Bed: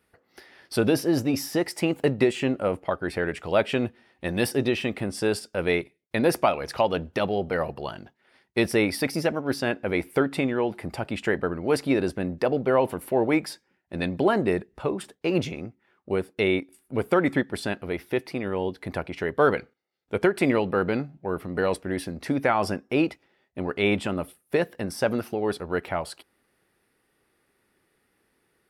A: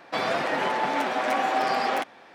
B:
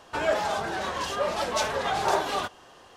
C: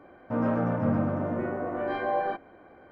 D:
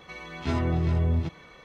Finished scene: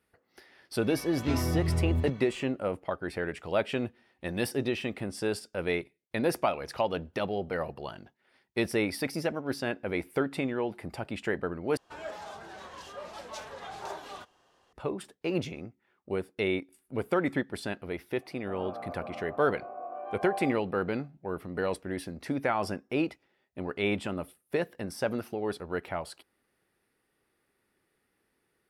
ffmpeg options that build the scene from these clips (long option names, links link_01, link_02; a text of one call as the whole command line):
ffmpeg -i bed.wav -i cue0.wav -i cue1.wav -i cue2.wav -i cue3.wav -filter_complex "[0:a]volume=-6dB[link_01];[3:a]asplit=3[link_02][link_03][link_04];[link_02]bandpass=frequency=730:width_type=q:width=8,volume=0dB[link_05];[link_03]bandpass=frequency=1090:width_type=q:width=8,volume=-6dB[link_06];[link_04]bandpass=frequency=2440:width_type=q:width=8,volume=-9dB[link_07];[link_05][link_06][link_07]amix=inputs=3:normalize=0[link_08];[link_01]asplit=2[link_09][link_10];[link_09]atrim=end=11.774[link_11];[2:a]atrim=end=2.96,asetpts=PTS-STARTPTS,volume=-15dB[link_12];[link_10]atrim=start=14.726[link_13];[4:a]atrim=end=1.64,asetpts=PTS-STARTPTS,volume=-3.5dB,afade=type=in:duration=0.004:curve=hsin,afade=type=out:start_time=1.636:duration=0.004:curve=hsin,adelay=810[link_14];[link_08]atrim=end=2.91,asetpts=PTS-STARTPTS,volume=-1dB,afade=type=in:duration=0.004:curve=hsin,afade=type=out:start_time=2.906:duration=0.004:curve=hsin,adelay=18170[link_15];[link_11][link_12]acrossfade=duration=0.004:curve1=hsin:curve2=hsin[link_16];[link_16][link_13]acrossfade=duration=0.004:curve1=hsin:curve2=hsin[link_17];[link_17][link_14][link_15]amix=inputs=3:normalize=0" out.wav